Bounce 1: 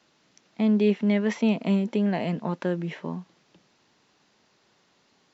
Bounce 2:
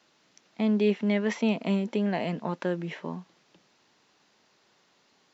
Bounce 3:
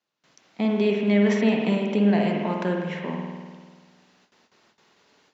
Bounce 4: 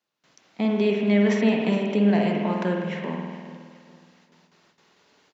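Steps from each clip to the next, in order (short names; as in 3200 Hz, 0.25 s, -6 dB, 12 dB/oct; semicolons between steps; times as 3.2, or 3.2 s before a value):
low shelf 230 Hz -6.5 dB
spring tank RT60 1.6 s, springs 49 ms, chirp 70 ms, DRR 0.5 dB; gate with hold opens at -53 dBFS; gain +2.5 dB
feedback echo 0.416 s, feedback 40%, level -16.5 dB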